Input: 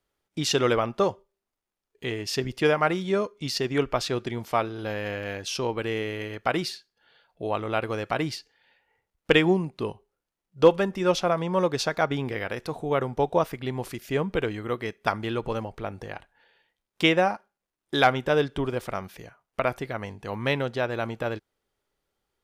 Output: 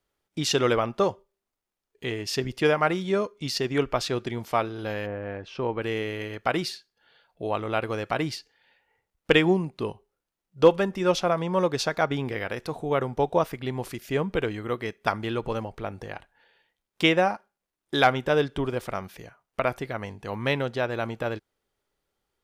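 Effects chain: 5.05–5.81 s: low-pass 1 kHz -> 2.6 kHz 12 dB/octave

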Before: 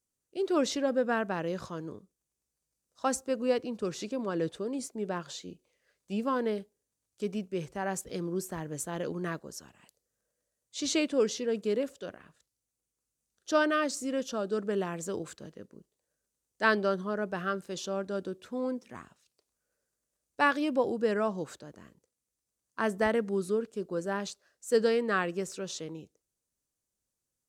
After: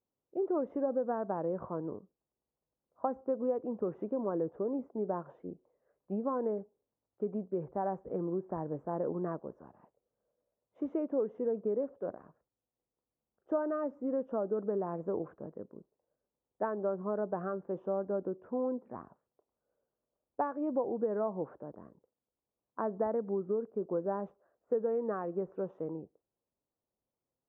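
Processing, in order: compression 6:1, threshold -32 dBFS, peak gain reduction 12 dB; inverse Chebyshev low-pass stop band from 4 kHz, stop band 70 dB; tilt EQ +3 dB/octave; trim +7 dB

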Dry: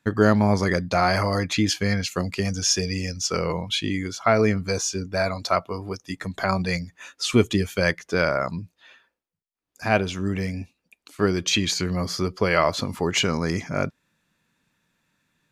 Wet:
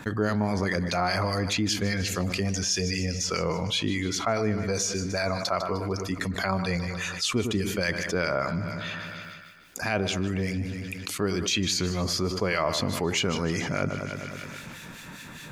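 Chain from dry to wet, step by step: harmonic tremolo 4.9 Hz, depth 70%, crossover 1.7 kHz; two-band feedback delay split 1.5 kHz, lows 102 ms, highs 152 ms, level -15.5 dB; level flattener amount 70%; trim -8.5 dB

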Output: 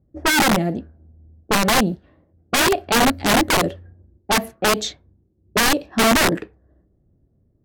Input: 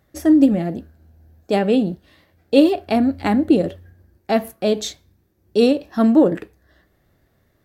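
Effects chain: integer overflow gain 13 dB; level-controlled noise filter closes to 310 Hz, open at -18 dBFS; trim +2 dB

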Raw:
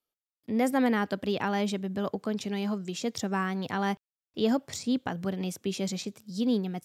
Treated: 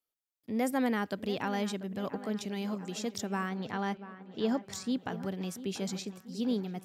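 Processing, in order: treble shelf 7.3 kHz +5.5 dB, from 3.49 s -8.5 dB, from 4.70 s +2 dB; feedback echo behind a low-pass 689 ms, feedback 57%, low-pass 2.6 kHz, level -14 dB; trim -4.5 dB

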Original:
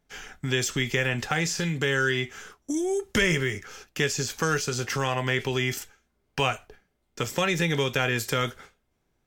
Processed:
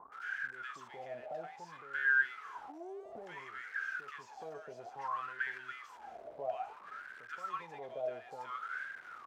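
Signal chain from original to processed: jump at every zero crossing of -23.5 dBFS; bands offset in time lows, highs 120 ms, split 990 Hz; wah-wah 0.59 Hz 620–1600 Hz, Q 20; trim +2.5 dB

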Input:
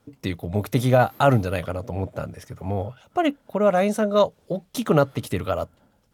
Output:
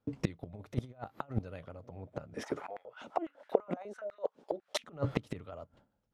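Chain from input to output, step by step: gate with hold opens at -45 dBFS; Bessel low-pass 5.7 kHz, order 2; treble shelf 2.3 kHz -5 dB; compressor with a negative ratio -23 dBFS, ratio -0.5; inverted gate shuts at -19 dBFS, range -24 dB; 2.35–4.84 s: step-sequenced high-pass 12 Hz 260–1900 Hz; trim +1.5 dB

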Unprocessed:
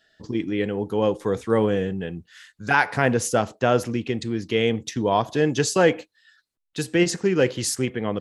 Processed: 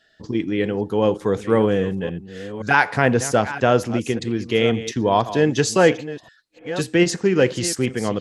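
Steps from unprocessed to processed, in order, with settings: chunks repeated in reverse 524 ms, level -13.5 dB; treble shelf 11 kHz -7.5 dB; trim +3 dB

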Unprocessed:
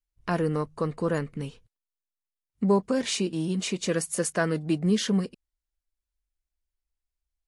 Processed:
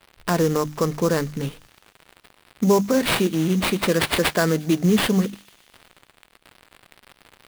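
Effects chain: treble shelf 9.1 kHz +8 dB; hum notches 50/100/150/200/250/300 Hz; in parallel at +3 dB: peak limiter -19 dBFS, peak gain reduction 7.5 dB; on the sum: crackle 400 per s -37 dBFS; sample-rate reducer 6.4 kHz, jitter 20%; on a send: feedback echo behind a high-pass 118 ms, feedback 70%, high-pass 2.8 kHz, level -20.5 dB

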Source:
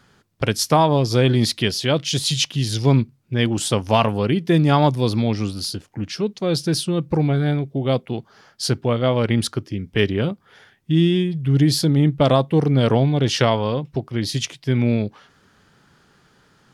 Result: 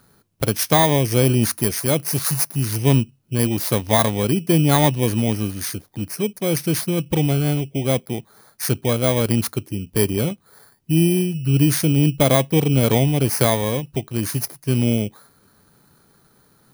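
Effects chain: bit-reversed sample order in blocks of 16 samples

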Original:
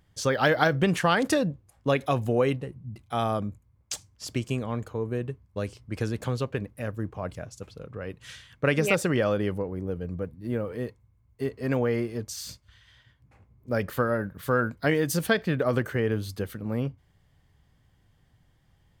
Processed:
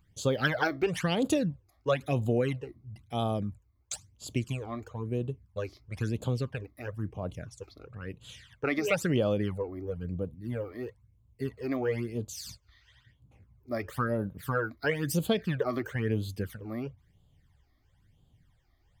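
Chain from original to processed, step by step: phase shifter stages 12, 1 Hz, lowest notch 150–1900 Hz; trim -1.5 dB

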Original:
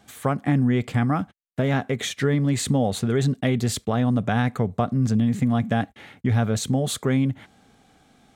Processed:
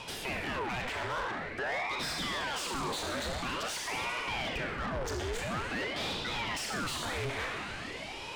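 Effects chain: frequency weighting A; spectral replace 1.45–1.89 s, 900–3700 Hz before; peaking EQ 950 Hz +6.5 dB 1.6 oct; reverse; compression 5:1, threshold -32 dBFS, peak gain reduction 15 dB; reverse; peak limiter -30.5 dBFS, peak gain reduction 10.5 dB; Schroeder reverb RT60 1.5 s, combs from 30 ms, DRR 3.5 dB; overdrive pedal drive 26 dB, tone 4.3 kHz, clips at -24.5 dBFS; ring modulator with a swept carrier 930 Hz, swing 85%, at 0.48 Hz

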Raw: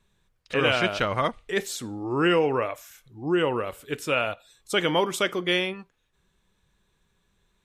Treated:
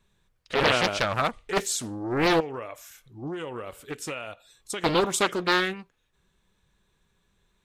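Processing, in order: dynamic bell 7.7 kHz, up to +8 dB, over -49 dBFS, Q 0.99; 2.40–4.84 s: compression 12:1, threshold -31 dBFS, peak gain reduction 14 dB; loudspeaker Doppler distortion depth 0.8 ms

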